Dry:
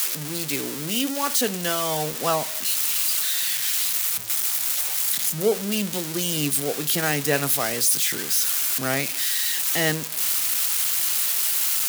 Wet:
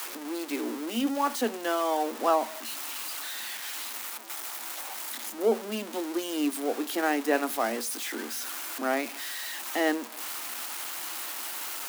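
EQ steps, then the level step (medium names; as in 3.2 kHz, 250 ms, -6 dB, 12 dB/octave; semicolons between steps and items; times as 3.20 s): rippled Chebyshev high-pass 220 Hz, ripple 6 dB; treble shelf 2.5 kHz -12 dB; +3.0 dB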